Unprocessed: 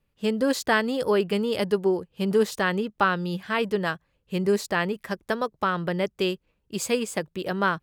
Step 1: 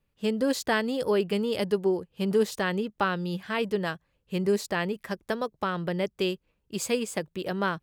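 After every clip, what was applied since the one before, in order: dynamic bell 1.3 kHz, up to -4 dB, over -35 dBFS, Q 1.2; trim -2 dB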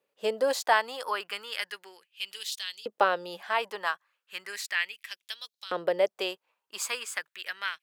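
LFO high-pass saw up 0.35 Hz 460–4400 Hz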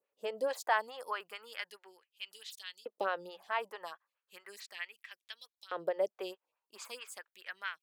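lamp-driven phase shifter 4.6 Hz; trim -6 dB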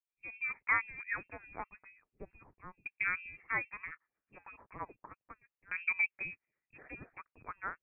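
fade-in on the opening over 0.77 s; frequency inversion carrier 2.9 kHz

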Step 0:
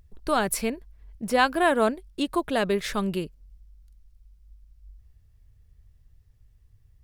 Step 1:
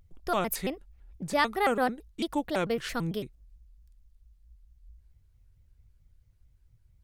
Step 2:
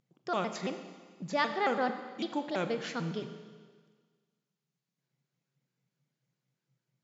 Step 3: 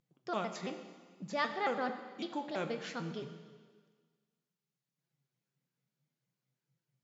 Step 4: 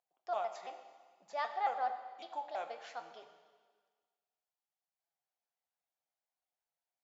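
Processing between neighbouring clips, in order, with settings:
vibrato with a chosen wave square 4.5 Hz, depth 250 cents; trim -4.5 dB
Schroeder reverb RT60 1.6 s, combs from 29 ms, DRR 8 dB; FFT band-pass 120–7500 Hz; trim -4 dB
flange 0.59 Hz, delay 5.7 ms, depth 8.4 ms, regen +59%
resonant high-pass 730 Hz, resonance Q 5.5; trim -8.5 dB

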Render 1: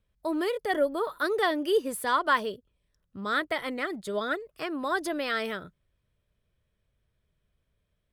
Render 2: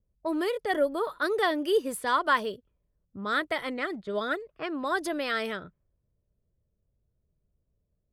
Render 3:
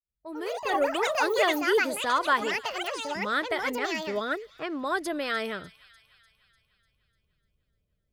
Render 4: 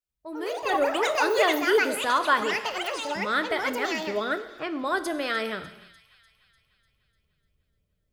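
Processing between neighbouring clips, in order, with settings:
level-controlled noise filter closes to 550 Hz, open at -26.5 dBFS
fade-in on the opening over 0.95 s; feedback echo behind a high-pass 298 ms, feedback 55%, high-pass 2.3 kHz, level -16.5 dB; ever faster or slower copies 169 ms, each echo +6 st, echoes 2
gated-style reverb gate 360 ms falling, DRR 9.5 dB; trim +1.5 dB

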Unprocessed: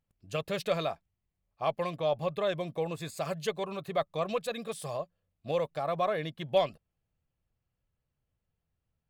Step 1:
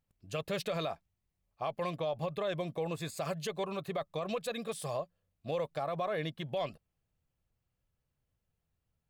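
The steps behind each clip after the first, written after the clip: peak limiter -26 dBFS, peak gain reduction 11 dB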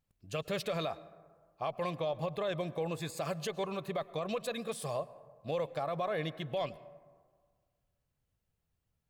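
plate-style reverb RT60 1.7 s, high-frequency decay 0.35×, pre-delay 95 ms, DRR 17.5 dB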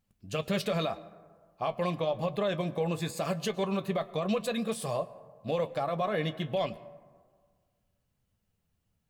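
small resonant body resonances 210/2900 Hz, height 7 dB; flange 0.85 Hz, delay 9.5 ms, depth 1.7 ms, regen -59%; trim +8 dB

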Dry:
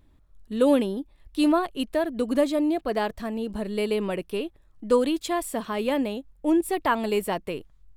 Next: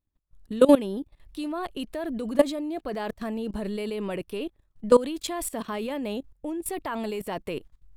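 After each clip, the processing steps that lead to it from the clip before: gate -53 dBFS, range -18 dB; level held to a coarse grid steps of 18 dB; trim +5.5 dB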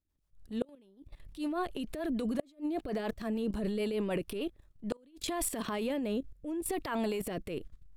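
transient shaper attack -8 dB, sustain +7 dB; rotary cabinet horn 6.7 Hz, later 0.75 Hz, at 4.30 s; inverted gate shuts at -19 dBFS, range -35 dB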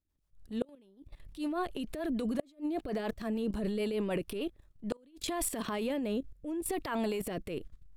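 no audible change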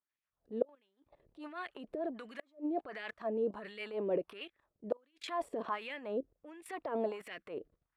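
LFO band-pass sine 1.4 Hz 450–2200 Hz; trim +5.5 dB

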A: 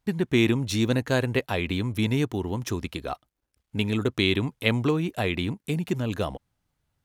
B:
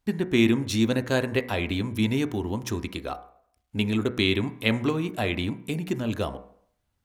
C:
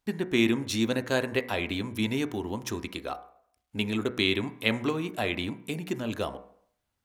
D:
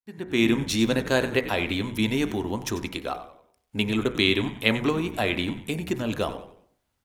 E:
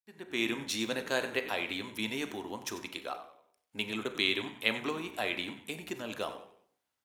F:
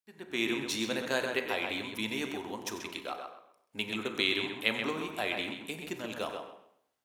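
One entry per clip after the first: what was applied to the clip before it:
de-hum 61.13 Hz, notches 38; on a send at -16 dB: reverberation RT60 0.75 s, pre-delay 3 ms
bass shelf 190 Hz -8.5 dB; trim -1 dB
fade-in on the opening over 0.53 s; frequency-shifting echo 93 ms, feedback 37%, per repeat -84 Hz, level -14 dB; trim +4 dB
high-pass 560 Hz 6 dB/octave; Schroeder reverb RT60 0.4 s, combs from 29 ms, DRR 13 dB; trim -6 dB
tape echo 131 ms, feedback 25%, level -5 dB, low-pass 3.6 kHz

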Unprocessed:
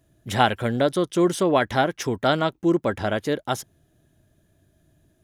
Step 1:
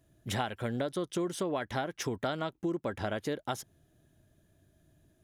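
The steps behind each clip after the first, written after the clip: compression 6:1, threshold -26 dBFS, peak gain reduction 13 dB; trim -4 dB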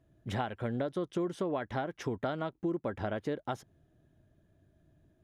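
low-pass 1.6 kHz 6 dB/octave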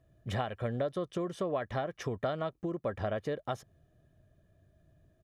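comb 1.7 ms, depth 42%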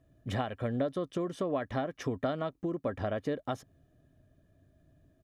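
peaking EQ 270 Hz +10.5 dB 0.29 oct

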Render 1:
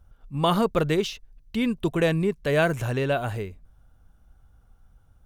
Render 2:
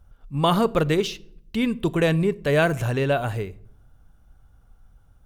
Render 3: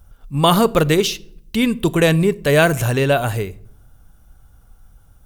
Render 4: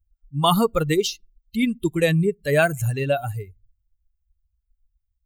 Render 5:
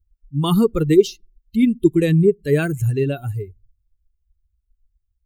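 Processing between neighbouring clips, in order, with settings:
reverberation RT60 0.65 s, pre-delay 7 ms, DRR 17.5 dB; trim +2 dB
treble shelf 5.7 kHz +11.5 dB; trim +5.5 dB
expander on every frequency bin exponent 2; trim -1.5 dB
resonant low shelf 490 Hz +8 dB, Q 3; trim -4.5 dB

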